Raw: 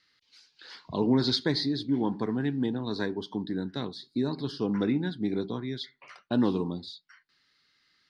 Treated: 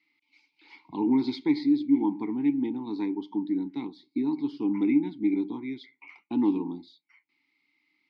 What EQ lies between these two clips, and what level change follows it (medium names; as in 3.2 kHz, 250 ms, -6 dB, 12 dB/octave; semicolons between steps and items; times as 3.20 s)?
vowel filter u; peaking EQ 2.2 kHz +8 dB 0.45 oct; treble shelf 5.9 kHz +7 dB; +9.0 dB